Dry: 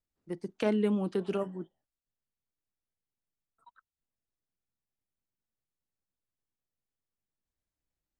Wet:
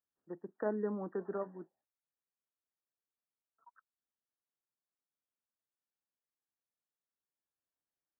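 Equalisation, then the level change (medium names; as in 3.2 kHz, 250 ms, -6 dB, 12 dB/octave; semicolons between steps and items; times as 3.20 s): high-pass 640 Hz 6 dB/octave; brick-wall FIR low-pass 1.9 kHz; distance through air 410 m; 0.0 dB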